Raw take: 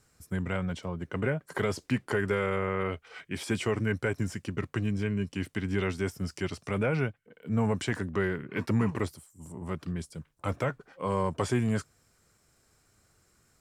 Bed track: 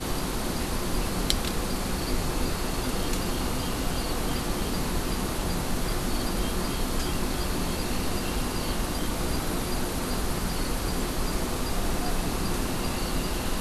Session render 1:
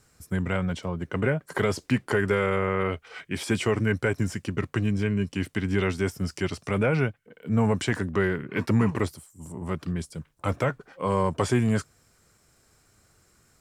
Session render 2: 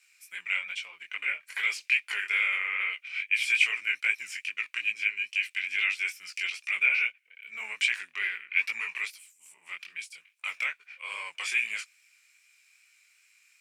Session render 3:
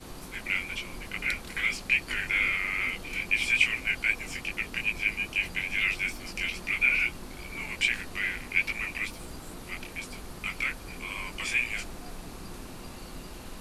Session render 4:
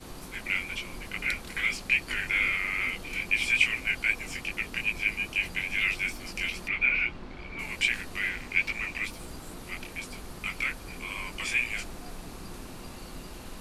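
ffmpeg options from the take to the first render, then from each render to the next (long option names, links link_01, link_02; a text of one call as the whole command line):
ffmpeg -i in.wav -af "volume=4.5dB" out.wav
ffmpeg -i in.wav -af "flanger=delay=17:depth=6.6:speed=2.4,highpass=frequency=2400:width_type=q:width=10" out.wav
ffmpeg -i in.wav -i bed.wav -filter_complex "[1:a]volume=-14dB[link_01];[0:a][link_01]amix=inputs=2:normalize=0" out.wav
ffmpeg -i in.wav -filter_complex "[0:a]asettb=1/sr,asplit=3[link_01][link_02][link_03];[link_01]atrim=end=6.684[link_04];[link_02]atrim=start=6.68:end=7.59,asetpts=PTS-STARTPTS,afade=type=in:duration=0.004:curve=qsin,afade=type=out:start_time=0.906:duration=0.004:curve=qsin,lowpass=3200[link_05];[link_03]atrim=start=7.586[link_06];[link_04][link_05]acrossfade=duration=0.004:curve1=hsin:curve2=qsin[link_07];[link_07][link_06]acrossfade=duration=0.004:curve1=qsin:curve2=hsin,asettb=1/sr,asplit=3[link_08][link_09][link_10];[link_08]atrim=end=8.294[link_11];[link_09]atrim=start=8.29:end=9.04,asetpts=PTS-STARTPTS,afade=type=in:duration=0.004:curve=qsin,afade=type=out:start_time=0.746:duration=0.004:curve=qsin,equalizer=frequency=11000:width_type=o:width=0.26:gain=-11.5[link_12];[link_10]atrim=start=9.036[link_13];[link_11][link_12]acrossfade=duration=0.004:curve1=hsin:curve2=qsin[link_14];[link_14][link_13]acrossfade=duration=0.004:curve1=qsin:curve2=hsin" out.wav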